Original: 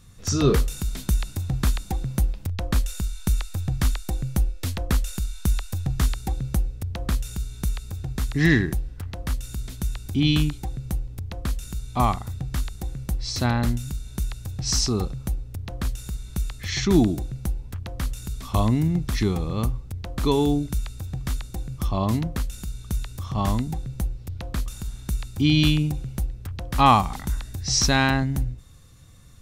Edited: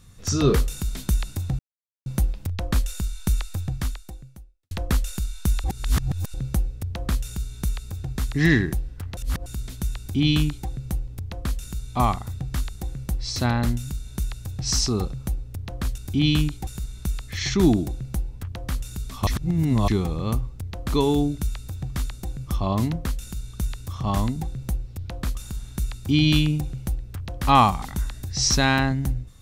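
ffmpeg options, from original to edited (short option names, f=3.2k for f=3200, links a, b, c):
-filter_complex "[0:a]asplit=12[a][b][c][d][e][f][g][h][i][j][k][l];[a]atrim=end=1.59,asetpts=PTS-STARTPTS,afade=t=out:st=1.586:d=0.004:c=hsin[m];[b]atrim=start=1.59:end=2.06,asetpts=PTS-STARTPTS,volume=0[n];[c]atrim=start=2.06:end=4.71,asetpts=PTS-STARTPTS,afade=t=in:d=0.004:c=hsin,afade=t=out:st=1.49:d=1.16:c=qua[o];[d]atrim=start=4.71:end=5.642,asetpts=PTS-STARTPTS,afade=t=in:d=0.004:c=hsin[p];[e]atrim=start=5.638:end=6.342,asetpts=PTS-STARTPTS,areverse[q];[f]atrim=start=6.338:end=9.172[r];[g]atrim=start=9.168:end=9.462,asetpts=PTS-STARTPTS,areverse[s];[h]atrim=start=9.458:end=15.982[t];[i]atrim=start=9.988:end=10.682[u];[j]atrim=start=15.978:end=18.582[v];[k]atrim=start=18.578:end=19.192,asetpts=PTS-STARTPTS,areverse[w];[l]atrim=start=19.188[x];[m][n][o][p]concat=n=4:v=0:a=1[y];[y][q]acrossfade=d=0.004:c1=hsin:c2=hsin[z];[z][r]acrossfade=d=0.004:c1=hsin:c2=hsin[aa];[aa][s]acrossfade=d=0.004:c1=hsin:c2=hsin[ab];[ab][t]acrossfade=d=0.004:c1=hsin:c2=hsin[ac];[ac][u]acrossfade=d=0.004:c1=hsin:c2=hsin[ad];[ad][v]acrossfade=d=0.004:c1=hsin:c2=hsin[ae];[ae][w]acrossfade=d=0.004:c1=hsin:c2=hsin[af];[af][x]acrossfade=d=0.004:c1=hsin:c2=hsin"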